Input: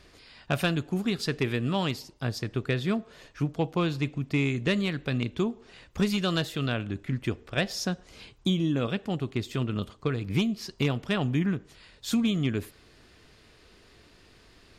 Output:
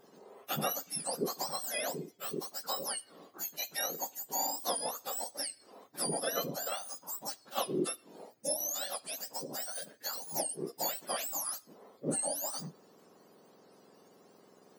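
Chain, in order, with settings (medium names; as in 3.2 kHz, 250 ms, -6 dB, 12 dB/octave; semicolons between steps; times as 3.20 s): spectrum inverted on a logarithmic axis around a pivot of 1.4 kHz; trim -3.5 dB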